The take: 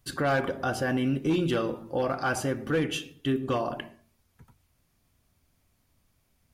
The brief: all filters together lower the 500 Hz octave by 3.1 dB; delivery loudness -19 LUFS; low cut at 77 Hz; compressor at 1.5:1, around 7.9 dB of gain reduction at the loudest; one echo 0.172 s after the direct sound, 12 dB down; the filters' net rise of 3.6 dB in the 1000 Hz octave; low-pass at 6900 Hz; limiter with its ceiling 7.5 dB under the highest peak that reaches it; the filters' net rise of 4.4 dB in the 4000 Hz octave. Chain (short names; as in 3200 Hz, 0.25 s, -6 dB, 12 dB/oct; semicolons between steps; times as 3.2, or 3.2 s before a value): HPF 77 Hz; LPF 6900 Hz; bell 500 Hz -6 dB; bell 1000 Hz +7 dB; bell 4000 Hz +6 dB; compressor 1.5:1, threshold -43 dBFS; limiter -28 dBFS; echo 0.172 s -12 dB; gain +19 dB